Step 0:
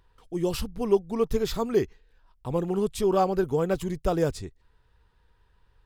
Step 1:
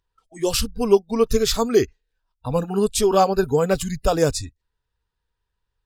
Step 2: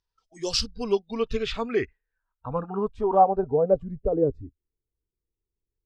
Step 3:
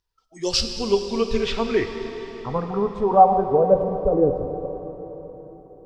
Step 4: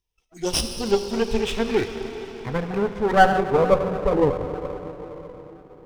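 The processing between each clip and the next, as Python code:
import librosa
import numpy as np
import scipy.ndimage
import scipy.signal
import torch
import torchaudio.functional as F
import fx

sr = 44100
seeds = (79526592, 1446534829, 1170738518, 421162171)

y1 = fx.noise_reduce_blind(x, sr, reduce_db=22)
y1 = fx.peak_eq(y1, sr, hz=6900.0, db=9.0, octaves=1.9)
y1 = F.gain(torch.from_numpy(y1), 6.5).numpy()
y2 = fx.filter_sweep_lowpass(y1, sr, from_hz=5500.0, to_hz=350.0, start_s=0.45, end_s=4.45, q=3.4)
y2 = F.gain(torch.from_numpy(y2), -8.5).numpy()
y3 = fx.rev_plate(y2, sr, seeds[0], rt60_s=4.3, hf_ratio=0.9, predelay_ms=0, drr_db=5.5)
y3 = F.gain(torch.from_numpy(y3), 3.5).numpy()
y4 = fx.lower_of_two(y3, sr, delay_ms=0.35)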